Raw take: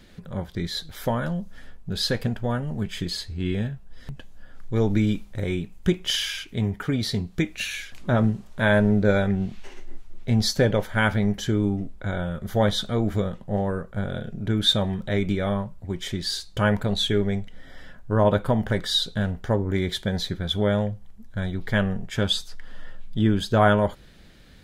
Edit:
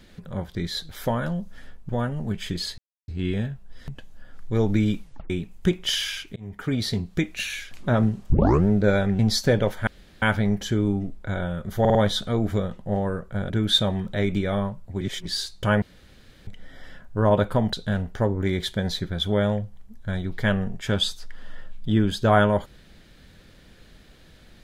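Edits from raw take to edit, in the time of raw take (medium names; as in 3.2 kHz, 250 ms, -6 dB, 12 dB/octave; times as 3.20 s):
1.89–2.40 s: delete
3.29 s: insert silence 0.30 s
5.23 s: tape stop 0.28 s
6.57–6.95 s: fade in
8.51 s: tape start 0.37 s
9.40–10.31 s: delete
10.99 s: insert room tone 0.35 s
12.57 s: stutter 0.05 s, 4 plays
14.12–14.44 s: delete
15.95–16.20 s: reverse
16.76–17.41 s: room tone
18.67–19.02 s: delete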